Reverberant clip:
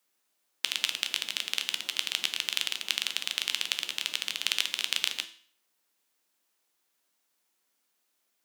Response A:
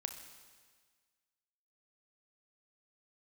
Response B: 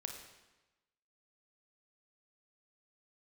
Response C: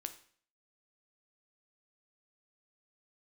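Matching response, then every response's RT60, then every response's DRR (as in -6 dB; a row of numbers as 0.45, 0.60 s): C; 1.6, 1.1, 0.50 s; 6.5, 3.0, 8.0 dB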